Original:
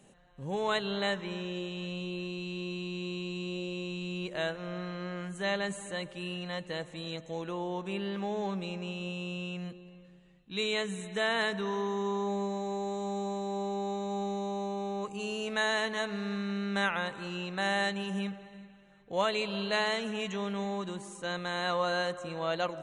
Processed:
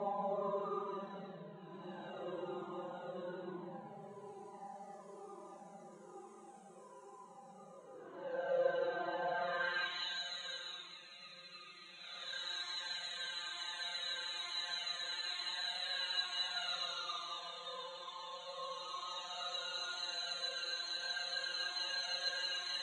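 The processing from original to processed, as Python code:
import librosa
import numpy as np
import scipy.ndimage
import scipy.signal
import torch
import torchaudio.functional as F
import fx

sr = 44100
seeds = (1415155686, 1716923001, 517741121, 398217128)

y = fx.paulstretch(x, sr, seeds[0], factor=18.0, window_s=0.05, from_s=20.77)
y = fx.filter_sweep_bandpass(y, sr, from_hz=660.0, to_hz=5000.0, start_s=9.31, end_s=10.21, q=1.4)
y = fx.comb_cascade(y, sr, direction='falling', hz=1.1)
y = F.gain(torch.from_numpy(y), 5.0).numpy()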